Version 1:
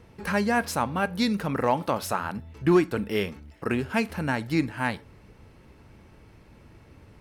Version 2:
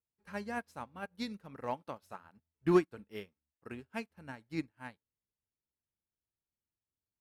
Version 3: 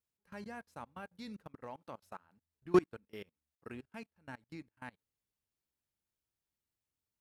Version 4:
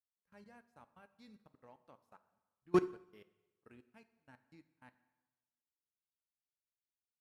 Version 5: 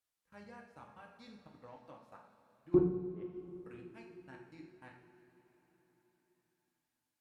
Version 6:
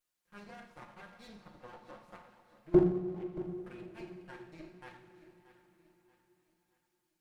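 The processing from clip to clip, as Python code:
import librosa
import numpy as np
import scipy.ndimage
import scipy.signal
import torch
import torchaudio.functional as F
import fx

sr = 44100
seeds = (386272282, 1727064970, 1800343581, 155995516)

y1 = fx.upward_expand(x, sr, threshold_db=-45.0, expansion=2.5)
y1 = y1 * 10.0 ** (-4.5 / 20.0)
y2 = fx.level_steps(y1, sr, step_db=24)
y2 = y2 * 10.0 ** (3.0 / 20.0)
y3 = fx.rev_plate(y2, sr, seeds[0], rt60_s=1.2, hf_ratio=0.85, predelay_ms=0, drr_db=9.0)
y3 = fx.upward_expand(y3, sr, threshold_db=-53.0, expansion=1.5)
y3 = y3 * 10.0 ** (-2.0 / 20.0)
y4 = fx.env_lowpass_down(y3, sr, base_hz=370.0, full_db=-41.0)
y4 = fx.rev_double_slope(y4, sr, seeds[1], early_s=0.59, late_s=4.9, knee_db=-16, drr_db=0.0)
y4 = y4 * 10.0 ** (4.5 / 20.0)
y5 = fx.lower_of_two(y4, sr, delay_ms=5.6)
y5 = fx.echo_feedback(y5, sr, ms=629, feedback_pct=40, wet_db=-15)
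y5 = y5 * 10.0 ** (4.0 / 20.0)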